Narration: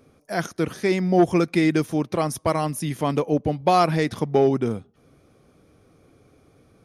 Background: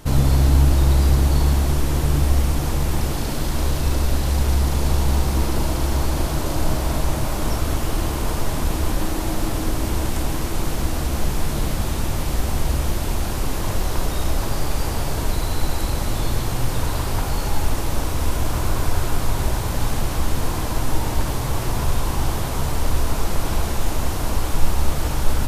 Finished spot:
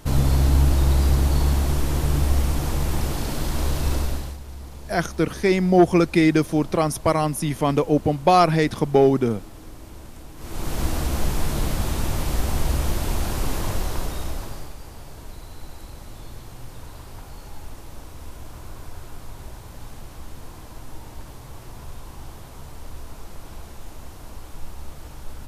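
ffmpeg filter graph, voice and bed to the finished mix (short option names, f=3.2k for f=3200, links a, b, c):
-filter_complex "[0:a]adelay=4600,volume=2.5dB[a];[1:a]volume=15dB,afade=t=out:st=3.94:d=0.44:silence=0.149624,afade=t=in:st=10.36:d=0.47:silence=0.133352,afade=t=out:st=13.53:d=1.23:silence=0.16788[b];[a][b]amix=inputs=2:normalize=0"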